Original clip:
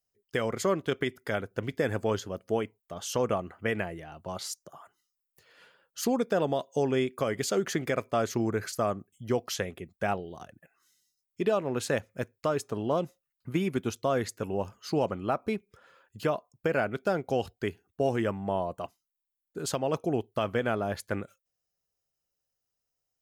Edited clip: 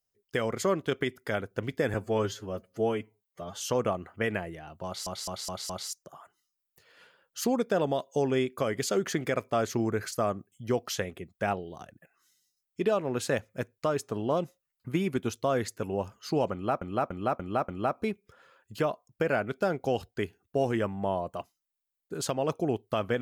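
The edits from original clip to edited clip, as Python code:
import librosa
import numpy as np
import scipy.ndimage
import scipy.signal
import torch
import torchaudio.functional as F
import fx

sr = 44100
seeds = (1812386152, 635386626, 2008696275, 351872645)

y = fx.edit(x, sr, fx.stretch_span(start_s=1.94, length_s=1.11, factor=1.5),
    fx.stutter(start_s=4.3, slice_s=0.21, count=5),
    fx.repeat(start_s=15.13, length_s=0.29, count=5), tone=tone)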